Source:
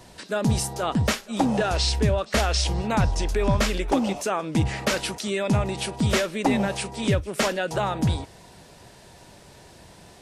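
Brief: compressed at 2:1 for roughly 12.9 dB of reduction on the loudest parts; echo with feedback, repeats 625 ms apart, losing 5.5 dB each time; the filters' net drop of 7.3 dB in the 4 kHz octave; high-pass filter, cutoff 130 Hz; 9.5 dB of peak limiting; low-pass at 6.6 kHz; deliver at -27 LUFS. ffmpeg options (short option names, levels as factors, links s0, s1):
-af "highpass=130,lowpass=6600,equalizer=f=4000:t=o:g=-9,acompressor=threshold=0.00708:ratio=2,alimiter=level_in=2.51:limit=0.0631:level=0:latency=1,volume=0.398,aecho=1:1:625|1250|1875|2500|3125|3750|4375:0.531|0.281|0.149|0.079|0.0419|0.0222|0.0118,volume=4.73"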